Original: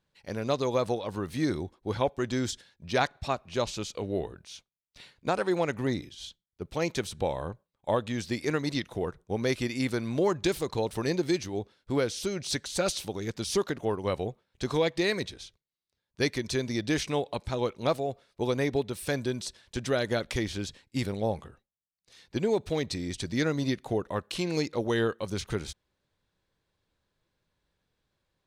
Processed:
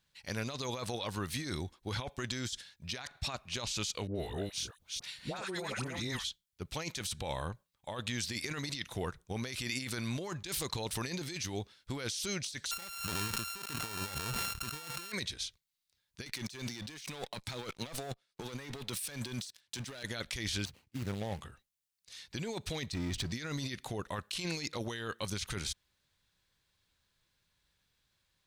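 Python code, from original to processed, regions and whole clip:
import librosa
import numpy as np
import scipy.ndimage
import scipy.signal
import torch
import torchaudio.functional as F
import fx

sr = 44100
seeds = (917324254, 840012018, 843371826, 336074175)

y = fx.chain(x, sr, fx.reverse_delay(ms=212, wet_db=-1.5),
    fx.high_shelf(hz=9200.0, db=3.5),
    fx.dispersion(late='highs', ms=81.0, hz=980.0), at=(4.07, 6.25))
y = fx.chain(y, sr, fx.sample_sort(block=32),
    fx.sustainer(db_per_s=46.0), at=(12.71, 15.12))
y = fx.chain(y, sr, fx.highpass(hz=110.0, slope=24),
    fx.leveller(passes=3),
    fx.upward_expand(threshold_db=-39.0, expansion=1.5), at=(16.26, 20.03))
y = fx.chain(y, sr, fx.median_filter(points=25),
    fx.highpass(hz=62.0, slope=12), at=(20.65, 21.41))
y = fx.chain(y, sr, fx.lowpass(hz=1100.0, slope=6),
    fx.power_curve(exponent=0.7), at=(22.92, 23.32))
y = fx.tone_stack(y, sr, knobs='5-5-5')
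y = fx.over_compress(y, sr, threshold_db=-48.0, ratio=-1.0)
y = y * librosa.db_to_amplitude(9.0)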